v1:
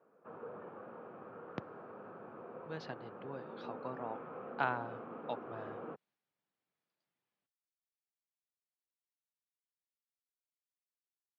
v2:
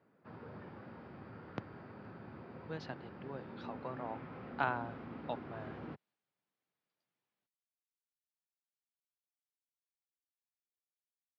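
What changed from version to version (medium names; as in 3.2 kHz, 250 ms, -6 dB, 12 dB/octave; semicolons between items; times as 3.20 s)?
background: remove cabinet simulation 230–2600 Hz, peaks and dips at 270 Hz -3 dB, 480 Hz +9 dB, 690 Hz +4 dB, 1.2 kHz +7 dB, 2 kHz -10 dB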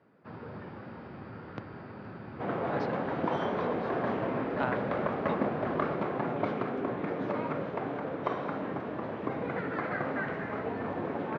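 first sound +7.0 dB; second sound: unmuted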